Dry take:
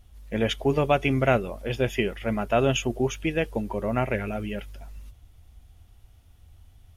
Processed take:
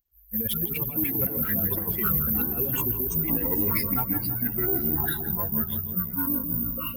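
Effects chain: expander on every frequency bin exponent 3; ever faster or slower copies 83 ms, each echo -5 st, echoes 3; compressor with a negative ratio -30 dBFS, ratio -0.5; 0.97–2.62 s: peaking EQ 320 Hz -> 2 kHz +13 dB 0.35 oct; comb of notches 610 Hz; filtered feedback delay 164 ms, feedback 66%, low-pass 1.1 kHz, level -8 dB; saturation -21.5 dBFS, distortion -22 dB; careless resampling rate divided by 3×, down none, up zero stuff; trim +1.5 dB; Opus 24 kbps 48 kHz

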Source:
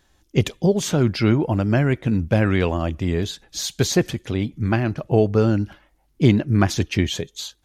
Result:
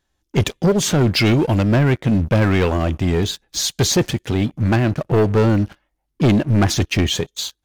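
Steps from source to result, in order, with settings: 1.16–1.63 s: resonant high shelf 1.9 kHz +6 dB, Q 1.5; waveshaping leveller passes 3; trim -5 dB

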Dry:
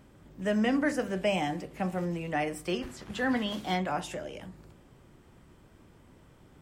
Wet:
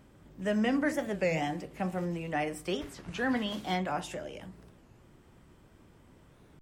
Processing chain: warped record 33 1/3 rpm, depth 250 cents; trim -1.5 dB

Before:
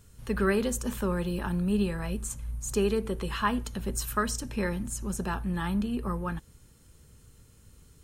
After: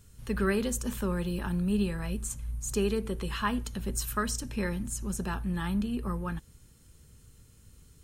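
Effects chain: peaking EQ 730 Hz -4 dB 2.4 oct

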